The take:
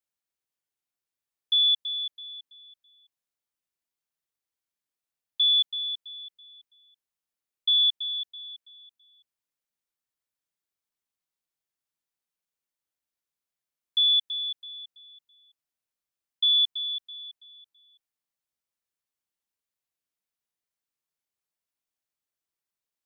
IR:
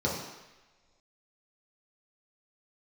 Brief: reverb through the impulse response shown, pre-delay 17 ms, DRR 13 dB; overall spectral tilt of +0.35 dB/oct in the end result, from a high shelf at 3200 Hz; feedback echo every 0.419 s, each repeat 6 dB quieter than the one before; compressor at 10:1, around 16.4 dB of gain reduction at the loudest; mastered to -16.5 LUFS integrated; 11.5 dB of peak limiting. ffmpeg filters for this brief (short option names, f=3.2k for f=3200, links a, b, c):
-filter_complex "[0:a]highshelf=f=3.2k:g=-8.5,acompressor=threshold=-41dB:ratio=10,alimiter=level_in=17.5dB:limit=-24dB:level=0:latency=1,volume=-17.5dB,aecho=1:1:419|838|1257|1676|2095|2514:0.501|0.251|0.125|0.0626|0.0313|0.0157,asplit=2[a][b];[1:a]atrim=start_sample=2205,adelay=17[c];[b][c]afir=irnorm=-1:irlink=0,volume=-23dB[d];[a][d]amix=inputs=2:normalize=0,volume=29.5dB"